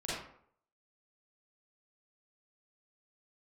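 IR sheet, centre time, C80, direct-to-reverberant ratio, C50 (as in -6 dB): 70 ms, 3.0 dB, -9.5 dB, -2.5 dB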